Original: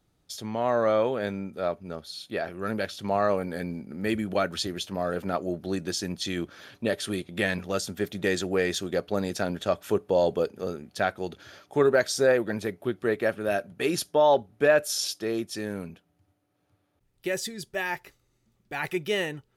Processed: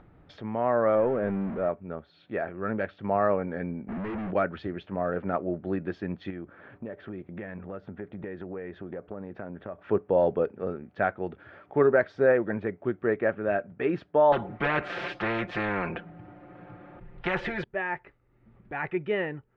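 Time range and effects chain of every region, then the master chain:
0.95–1.69 s: jump at every zero crossing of -29 dBFS + de-esser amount 95%
3.88–4.31 s: waveshaping leveller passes 5 + hard clipper -32 dBFS
6.30–9.79 s: low-pass 1.5 kHz 6 dB/octave + compression 5:1, threshold -34 dBFS
14.32–17.64 s: comb 5.7 ms, depth 86% + spectrum-flattening compressor 4:1
whole clip: low-pass 2.1 kHz 24 dB/octave; upward compressor, threshold -42 dBFS

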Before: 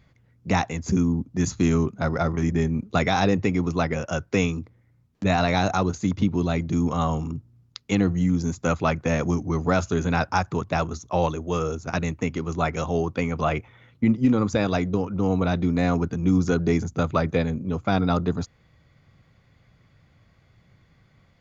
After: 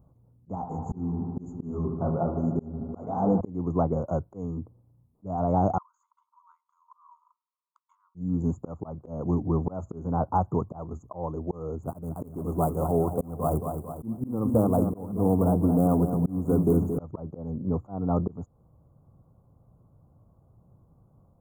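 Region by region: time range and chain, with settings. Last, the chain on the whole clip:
0.55–3.41 s: chorus 1.1 Hz, delay 16 ms, depth 7.4 ms + bucket-brigade echo 76 ms, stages 2048, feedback 82%, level -11 dB
5.78–8.15 s: compression, threshold -32 dBFS + brick-wall FIR high-pass 910 Hz + distance through air 180 m
11.83–16.98 s: dead-time distortion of 0.13 ms + bit-crushed delay 224 ms, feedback 55%, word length 8-bit, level -8 dB
whole clip: inverse Chebyshev band-stop 1.7–5.8 kHz, stop band 40 dB; slow attack 327 ms

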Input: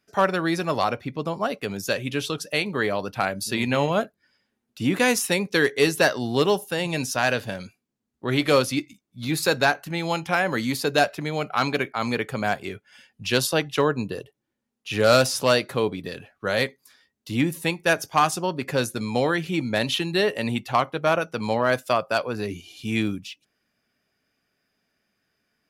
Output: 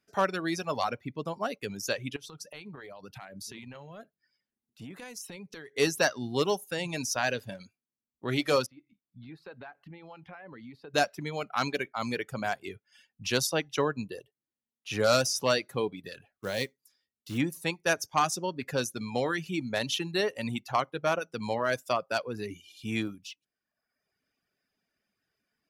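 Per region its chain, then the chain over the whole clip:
2.16–5.75 s: transient shaper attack -11 dB, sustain -1 dB + peaking EQ 150 Hz +5.5 dB 0.64 oct + compression 16:1, threshold -33 dBFS
8.66–10.94 s: compression 3:1, threshold -39 dBFS + distance through air 390 m
16.32–17.38 s: peaking EQ 1.3 kHz -5.5 dB 1.8 oct + short-mantissa float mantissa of 2-bit
whole clip: reverb removal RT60 0.94 s; dynamic bell 5.9 kHz, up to +8 dB, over -50 dBFS, Q 3.2; trim -6 dB

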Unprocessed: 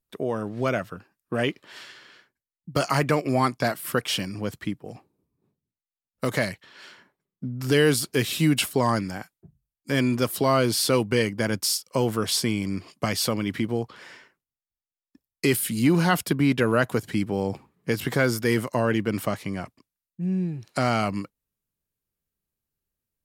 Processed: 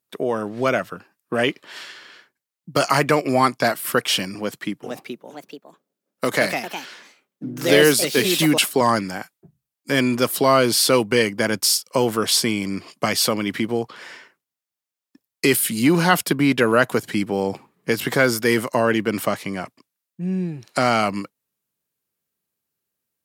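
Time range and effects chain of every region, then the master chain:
4.35–8.81 s: high-pass 140 Hz + ever faster or slower copies 477 ms, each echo +3 st, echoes 2, each echo -6 dB
whole clip: high-pass 130 Hz 12 dB/octave; bass shelf 260 Hz -6 dB; trim +6.5 dB

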